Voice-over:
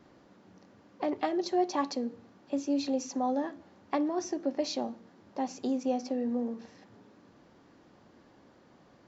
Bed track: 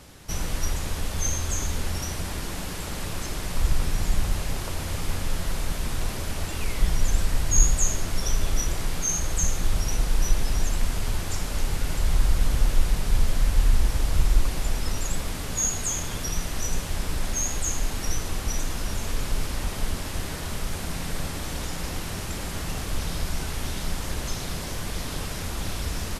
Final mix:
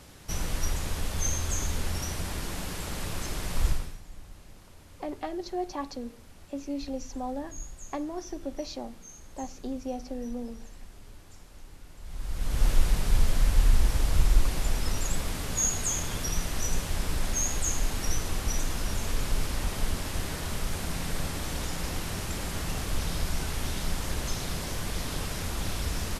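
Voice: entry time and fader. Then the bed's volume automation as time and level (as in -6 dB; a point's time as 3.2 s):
4.00 s, -4.5 dB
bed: 3.69 s -2.5 dB
4.03 s -22.5 dB
11.97 s -22.5 dB
12.66 s -1.5 dB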